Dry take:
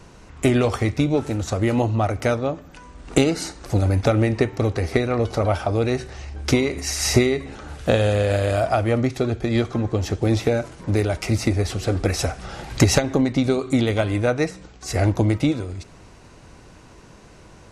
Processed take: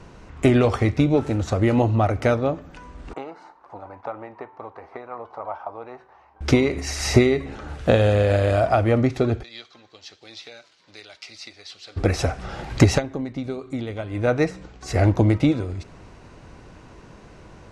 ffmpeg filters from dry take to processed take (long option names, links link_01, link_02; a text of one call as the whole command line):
ffmpeg -i in.wav -filter_complex "[0:a]asettb=1/sr,asplit=3[link_01][link_02][link_03];[link_01]atrim=end=3.134[link_04];[link_02]atrim=start=3.13:end=6.41,asetpts=PTS-STARTPTS,afade=type=in:duration=0.004:curve=qsin,afade=type=out:start_time=3.276:duration=0.004:curve=qsin,bandpass=frequency=960:width_type=q:width=4.5[link_05];[link_03]atrim=start=6.406[link_06];[link_04][link_05]acrossfade=duration=0.004:curve1=hsin:curve2=qsin[link_07];[link_07][link_06]acrossfade=duration=0.004:curve1=qsin:curve2=hsin,asplit=3[link_08][link_09][link_10];[link_08]afade=type=out:start_time=9.42:duration=0.02[link_11];[link_09]bandpass=frequency=4200:width_type=q:width=2.4,afade=type=in:start_time=9.42:duration=0.02,afade=type=out:start_time=11.96:duration=0.02[link_12];[link_10]afade=type=in:start_time=11.96:duration=0.02[link_13];[link_11][link_12][link_13]amix=inputs=3:normalize=0,asplit=3[link_14][link_15][link_16];[link_14]atrim=end=13.09,asetpts=PTS-STARTPTS,afade=type=out:start_time=12.86:duration=0.23:silence=0.281838[link_17];[link_15]atrim=start=13.09:end=14.1,asetpts=PTS-STARTPTS,volume=-11dB[link_18];[link_16]atrim=start=14.1,asetpts=PTS-STARTPTS,afade=type=in:duration=0.23:silence=0.281838[link_19];[link_17][link_18][link_19]concat=n=3:v=0:a=1,aemphasis=mode=reproduction:type=50kf,volume=1.5dB" out.wav